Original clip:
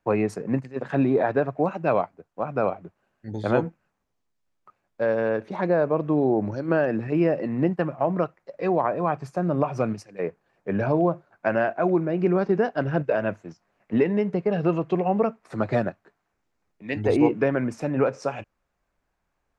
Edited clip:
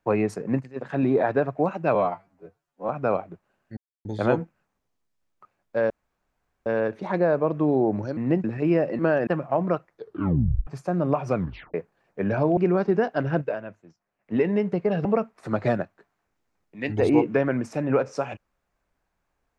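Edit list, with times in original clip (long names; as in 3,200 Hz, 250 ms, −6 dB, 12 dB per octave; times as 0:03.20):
0:00.62–0:01.03: clip gain −3 dB
0:01.95–0:02.42: time-stretch 2×
0:03.30: splice in silence 0.28 s
0:05.15: splice in room tone 0.76 s
0:06.66–0:06.94: swap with 0:07.49–0:07.76
0:08.37: tape stop 0.79 s
0:09.84: tape stop 0.39 s
0:11.06–0:12.18: remove
0:12.98–0:14.06: duck −12 dB, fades 0.25 s
0:14.66–0:15.12: remove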